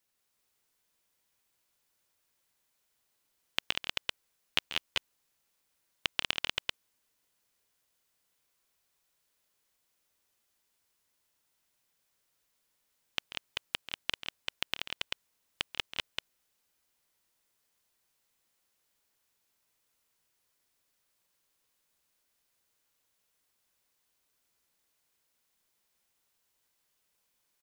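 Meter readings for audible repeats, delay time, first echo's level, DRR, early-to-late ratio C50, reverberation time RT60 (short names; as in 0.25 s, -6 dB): 3, 0.138 s, -13.5 dB, none, none, none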